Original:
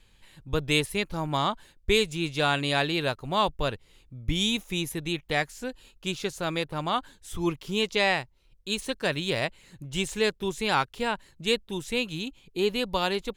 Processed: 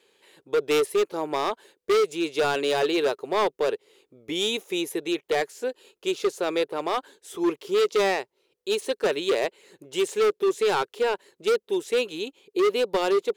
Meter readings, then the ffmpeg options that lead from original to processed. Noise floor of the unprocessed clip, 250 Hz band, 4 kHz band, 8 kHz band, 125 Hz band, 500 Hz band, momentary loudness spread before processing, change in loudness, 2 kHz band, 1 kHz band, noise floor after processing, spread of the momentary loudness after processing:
-61 dBFS, +0.5 dB, -2.5 dB, +0.5 dB, -14.0 dB, +7.0 dB, 10 LU, +2.5 dB, -2.0 dB, +1.0 dB, -79 dBFS, 8 LU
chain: -af "highpass=f=410:t=q:w=4.9,asoftclip=type=hard:threshold=0.126"

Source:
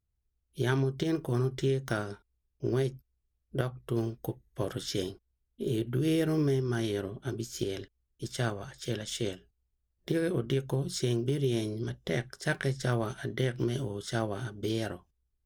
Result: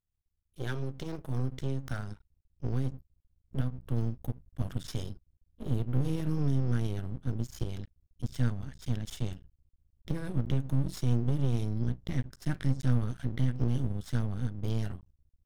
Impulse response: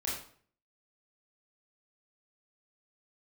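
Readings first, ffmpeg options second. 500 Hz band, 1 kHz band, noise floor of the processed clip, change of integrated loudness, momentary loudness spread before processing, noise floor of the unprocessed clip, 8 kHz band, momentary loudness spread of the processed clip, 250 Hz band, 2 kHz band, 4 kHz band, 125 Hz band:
-10.5 dB, -6.5 dB, -81 dBFS, -1.0 dB, 10 LU, -80 dBFS, -8.5 dB, 11 LU, -2.5 dB, -9.0 dB, -9.0 dB, +2.5 dB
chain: -af "asubboost=boost=11:cutoff=130,aeval=exprs='max(val(0),0)':c=same,volume=0.596"

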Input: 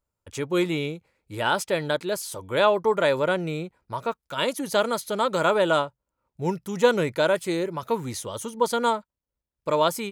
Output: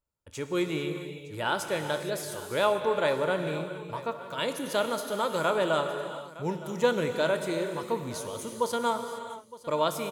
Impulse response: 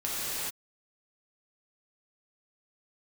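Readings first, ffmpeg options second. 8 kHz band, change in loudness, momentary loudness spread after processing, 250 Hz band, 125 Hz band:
-4.0 dB, -5.0 dB, 10 LU, -4.5 dB, -4.5 dB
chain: -filter_complex "[0:a]aecho=1:1:913:0.126,asplit=2[s0][s1];[1:a]atrim=start_sample=2205,highshelf=f=11000:g=6.5,adelay=26[s2];[s1][s2]afir=irnorm=-1:irlink=0,volume=0.168[s3];[s0][s3]amix=inputs=2:normalize=0,volume=0.531"

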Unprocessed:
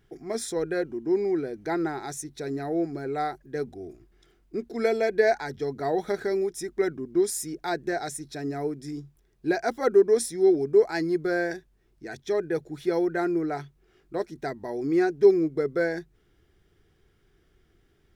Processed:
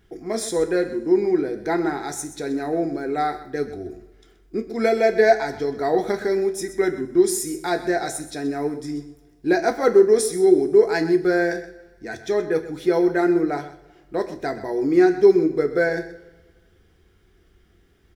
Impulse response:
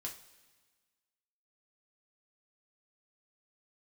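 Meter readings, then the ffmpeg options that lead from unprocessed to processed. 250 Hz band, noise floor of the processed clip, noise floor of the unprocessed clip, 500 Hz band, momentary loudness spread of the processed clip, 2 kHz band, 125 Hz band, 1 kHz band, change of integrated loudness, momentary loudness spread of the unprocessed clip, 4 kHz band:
+6.0 dB, -58 dBFS, -65 dBFS, +5.5 dB, 14 LU, +6.0 dB, +3.0 dB, +6.0 dB, +5.5 dB, 14 LU, +5.5 dB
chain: -filter_complex "[0:a]aecho=1:1:127:0.2,asplit=2[s0][s1];[1:a]atrim=start_sample=2205[s2];[s1][s2]afir=irnorm=-1:irlink=0,volume=1.41[s3];[s0][s3]amix=inputs=2:normalize=0"

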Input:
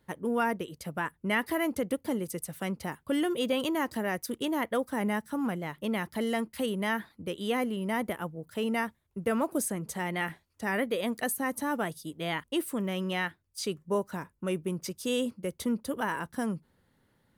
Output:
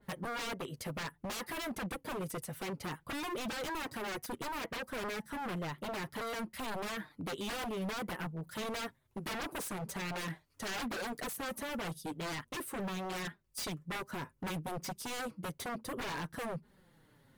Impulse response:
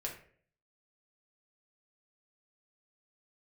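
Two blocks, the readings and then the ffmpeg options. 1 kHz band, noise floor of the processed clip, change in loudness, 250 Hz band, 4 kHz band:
-5.5 dB, -70 dBFS, -7.5 dB, -10.5 dB, -3.5 dB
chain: -filter_complex "[0:a]asplit=2[s0][s1];[s1]acompressor=threshold=0.00794:ratio=6,volume=1[s2];[s0][s2]amix=inputs=2:normalize=0,flanger=delay=4.8:depth=3.5:regen=9:speed=0.6:shape=triangular,aeval=exprs='0.0188*(abs(mod(val(0)/0.0188+3,4)-2)-1)':c=same,adynamicequalizer=threshold=0.00158:dfrequency=2800:dqfactor=0.7:tfrequency=2800:tqfactor=0.7:attack=5:release=100:ratio=0.375:range=2.5:mode=cutabove:tftype=highshelf,volume=1.19"

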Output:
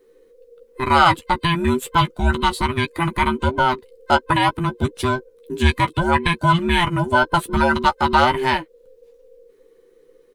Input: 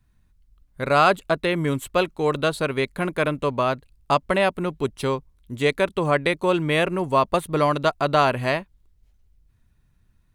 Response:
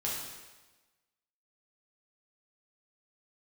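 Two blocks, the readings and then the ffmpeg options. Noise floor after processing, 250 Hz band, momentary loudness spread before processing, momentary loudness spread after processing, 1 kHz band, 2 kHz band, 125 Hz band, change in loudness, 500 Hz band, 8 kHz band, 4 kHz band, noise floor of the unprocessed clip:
-55 dBFS, +4.0 dB, 7 LU, 7 LU, +6.0 dB, +5.0 dB, +6.0 dB, +3.5 dB, -2.5 dB, +4.0 dB, +6.0 dB, -63 dBFS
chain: -filter_complex "[0:a]afftfilt=real='real(if(between(b,1,1008),(2*floor((b-1)/24)+1)*24-b,b),0)':imag='imag(if(between(b,1,1008),(2*floor((b-1)/24)+1)*24-b,b),0)*if(between(b,1,1008),-1,1)':win_size=2048:overlap=0.75,asplit=2[s0][s1];[s1]acompressor=threshold=0.0178:ratio=6,volume=0.75[s2];[s0][s2]amix=inputs=2:normalize=0,asplit=2[s3][s4];[s4]adelay=13,volume=0.398[s5];[s3][s5]amix=inputs=2:normalize=0,volume=1.26"

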